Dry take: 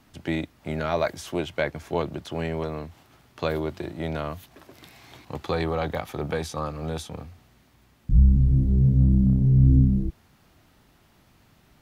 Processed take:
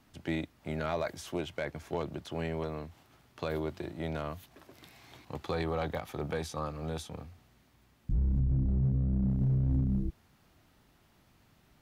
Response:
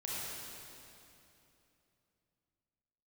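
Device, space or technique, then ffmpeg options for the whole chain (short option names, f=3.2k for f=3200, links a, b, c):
limiter into clipper: -filter_complex "[0:a]alimiter=limit=-15.5dB:level=0:latency=1:release=64,asoftclip=type=hard:threshold=-17dB,asettb=1/sr,asplit=3[a][b][c];[a]atrim=end=8.394[d];[b]atrim=start=8.39:end=9.3,asetpts=PTS-STARTPTS,afade=t=in:d=0.004:c=qsin,afade=t=out:st=0.906:d=0.004:c=qsin,aemphasis=mode=reproduction:type=75kf[e];[c]atrim=start=9.296[f];[d][e]acrossfade=d=0.004:c1=hsin:c2=qsin[g];[g][f]acrossfade=d=0.004:c1=qsin:c2=hsin,volume=-6dB"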